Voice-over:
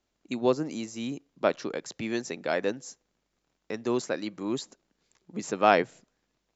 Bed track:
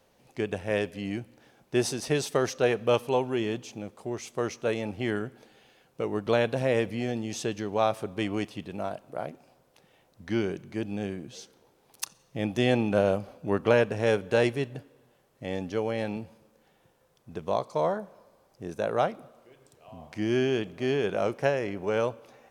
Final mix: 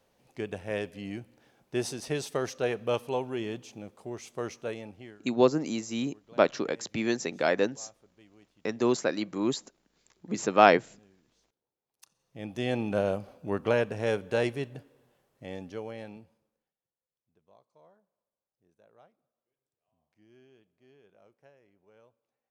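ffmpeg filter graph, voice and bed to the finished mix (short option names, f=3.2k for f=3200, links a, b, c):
-filter_complex "[0:a]adelay=4950,volume=2.5dB[a];[1:a]volume=19.5dB,afade=t=out:st=4.52:d=0.67:silence=0.0668344,afade=t=in:st=11.98:d=0.93:silence=0.0595662,afade=t=out:st=14.99:d=1.75:silence=0.0334965[b];[a][b]amix=inputs=2:normalize=0"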